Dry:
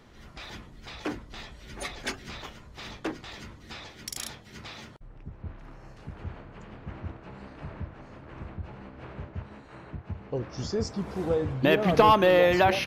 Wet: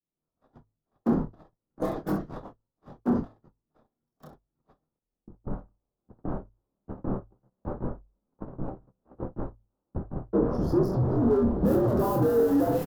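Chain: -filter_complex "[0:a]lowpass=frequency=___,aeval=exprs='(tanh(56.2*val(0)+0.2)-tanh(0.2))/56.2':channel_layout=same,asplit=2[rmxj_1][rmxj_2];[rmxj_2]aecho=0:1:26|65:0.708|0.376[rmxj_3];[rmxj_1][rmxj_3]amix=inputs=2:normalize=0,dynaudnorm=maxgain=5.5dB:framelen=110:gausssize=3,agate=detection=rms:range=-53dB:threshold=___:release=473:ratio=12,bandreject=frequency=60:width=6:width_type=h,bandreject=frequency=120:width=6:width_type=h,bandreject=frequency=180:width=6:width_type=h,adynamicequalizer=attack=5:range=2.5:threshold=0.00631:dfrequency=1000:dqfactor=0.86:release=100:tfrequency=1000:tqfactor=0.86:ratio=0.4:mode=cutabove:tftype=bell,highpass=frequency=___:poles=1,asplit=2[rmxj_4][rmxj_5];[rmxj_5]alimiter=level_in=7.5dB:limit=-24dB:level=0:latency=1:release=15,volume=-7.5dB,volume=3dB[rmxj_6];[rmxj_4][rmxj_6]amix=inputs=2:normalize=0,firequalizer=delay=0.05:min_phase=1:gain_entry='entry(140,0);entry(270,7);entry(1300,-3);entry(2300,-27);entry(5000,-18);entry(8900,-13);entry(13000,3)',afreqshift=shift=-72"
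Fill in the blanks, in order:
4000, -30dB, 90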